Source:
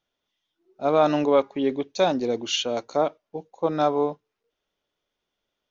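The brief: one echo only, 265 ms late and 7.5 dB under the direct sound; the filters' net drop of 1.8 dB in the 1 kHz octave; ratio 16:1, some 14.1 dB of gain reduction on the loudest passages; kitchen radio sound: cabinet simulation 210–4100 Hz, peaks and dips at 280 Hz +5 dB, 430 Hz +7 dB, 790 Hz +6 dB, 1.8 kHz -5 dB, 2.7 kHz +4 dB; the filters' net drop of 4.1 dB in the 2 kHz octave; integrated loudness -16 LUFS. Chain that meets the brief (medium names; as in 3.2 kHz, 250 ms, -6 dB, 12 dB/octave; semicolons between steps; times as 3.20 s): peaking EQ 1 kHz -8.5 dB; peaking EQ 2 kHz -5.5 dB; compression 16:1, threshold -31 dBFS; cabinet simulation 210–4100 Hz, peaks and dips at 280 Hz +5 dB, 430 Hz +7 dB, 790 Hz +6 dB, 1.8 kHz -5 dB, 2.7 kHz +4 dB; delay 265 ms -7.5 dB; trim +17 dB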